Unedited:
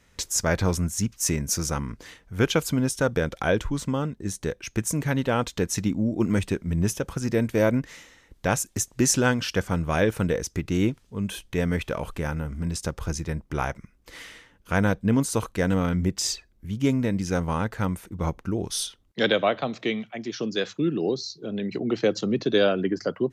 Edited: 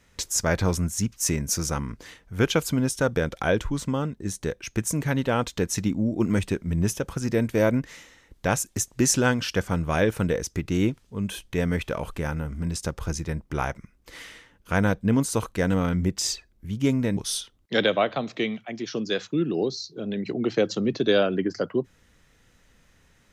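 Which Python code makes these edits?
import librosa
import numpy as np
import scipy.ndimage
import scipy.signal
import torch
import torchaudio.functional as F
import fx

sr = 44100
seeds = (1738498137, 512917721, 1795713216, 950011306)

y = fx.edit(x, sr, fx.cut(start_s=17.17, length_s=1.46), tone=tone)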